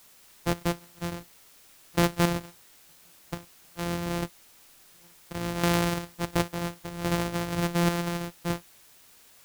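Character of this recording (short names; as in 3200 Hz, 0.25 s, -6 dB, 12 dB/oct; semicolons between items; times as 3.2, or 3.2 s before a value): a buzz of ramps at a fixed pitch in blocks of 256 samples; chopped level 0.71 Hz, depth 60%, duty 60%; a quantiser's noise floor 10-bit, dither triangular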